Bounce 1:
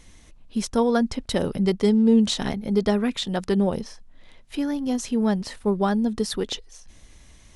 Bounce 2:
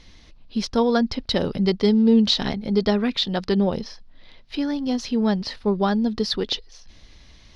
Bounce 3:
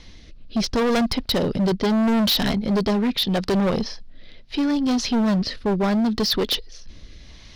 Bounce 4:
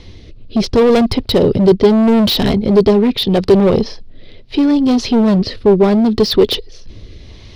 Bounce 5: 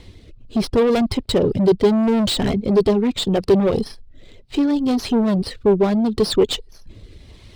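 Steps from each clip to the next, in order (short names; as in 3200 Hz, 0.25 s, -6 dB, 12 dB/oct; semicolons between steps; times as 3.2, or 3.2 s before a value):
resonant high shelf 6300 Hz -11.5 dB, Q 3; gain +1 dB
rotary speaker horn 0.75 Hz; hard clip -25 dBFS, distortion -5 dB; gain +7.5 dB
fifteen-band EQ 100 Hz +10 dB, 400 Hz +9 dB, 1600 Hz -5 dB, 6300 Hz -5 dB, 16000 Hz -9 dB; gain +6 dB
reverb removal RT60 0.52 s; running maximum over 3 samples; gain -5 dB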